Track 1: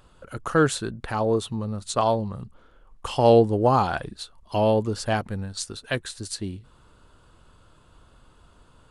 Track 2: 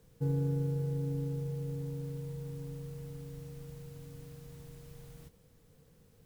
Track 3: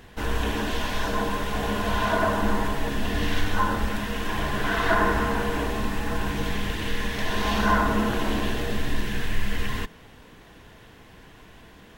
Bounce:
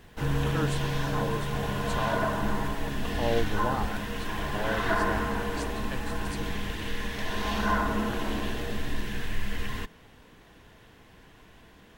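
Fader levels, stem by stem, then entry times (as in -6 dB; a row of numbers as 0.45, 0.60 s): -13.0, +1.5, -5.0 dB; 0.00, 0.00, 0.00 s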